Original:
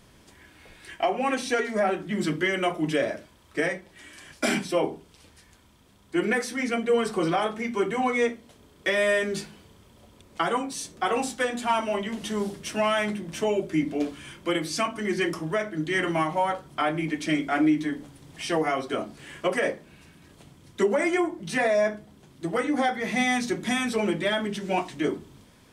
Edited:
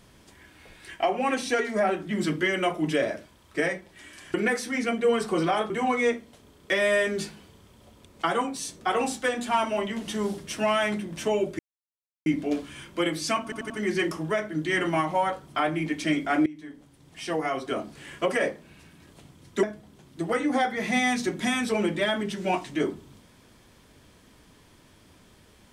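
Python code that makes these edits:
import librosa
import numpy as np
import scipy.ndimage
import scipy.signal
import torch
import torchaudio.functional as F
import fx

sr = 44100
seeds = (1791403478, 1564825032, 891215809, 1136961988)

y = fx.edit(x, sr, fx.cut(start_s=4.34, length_s=1.85),
    fx.cut(start_s=7.55, length_s=0.31),
    fx.insert_silence(at_s=13.75, length_s=0.67),
    fx.stutter(start_s=14.92, slice_s=0.09, count=4),
    fx.fade_in_from(start_s=17.68, length_s=1.4, floor_db=-20.5),
    fx.cut(start_s=20.85, length_s=1.02), tone=tone)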